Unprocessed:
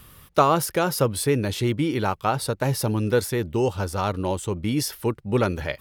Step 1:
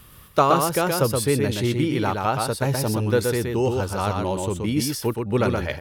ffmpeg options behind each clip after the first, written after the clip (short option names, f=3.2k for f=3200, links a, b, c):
-af "aecho=1:1:123:0.631"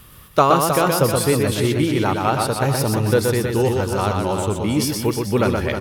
-af "aecho=1:1:314|628|942:0.398|0.115|0.0335,volume=3dB"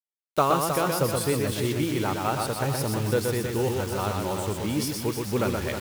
-af "acrusher=bits=4:mix=0:aa=0.000001,volume=-7.5dB"